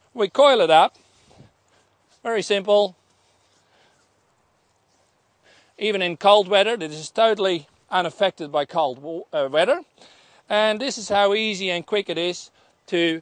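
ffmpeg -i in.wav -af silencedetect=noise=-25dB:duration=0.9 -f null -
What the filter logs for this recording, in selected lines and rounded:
silence_start: 0.87
silence_end: 2.26 | silence_duration: 1.39
silence_start: 2.87
silence_end: 5.81 | silence_duration: 2.94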